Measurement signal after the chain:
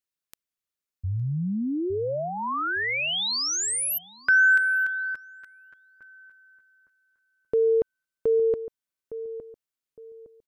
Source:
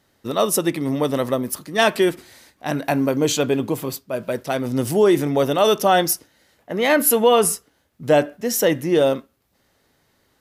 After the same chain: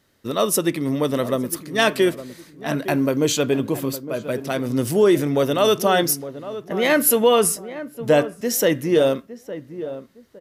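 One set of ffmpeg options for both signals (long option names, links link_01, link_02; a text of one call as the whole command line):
ffmpeg -i in.wav -filter_complex "[0:a]equalizer=frequency=800:width=3.3:gain=-6,asplit=2[link_01][link_02];[link_02]adelay=861,lowpass=frequency=1100:poles=1,volume=-12.5dB,asplit=2[link_03][link_04];[link_04]adelay=861,lowpass=frequency=1100:poles=1,volume=0.32,asplit=2[link_05][link_06];[link_06]adelay=861,lowpass=frequency=1100:poles=1,volume=0.32[link_07];[link_01][link_03][link_05][link_07]amix=inputs=4:normalize=0" out.wav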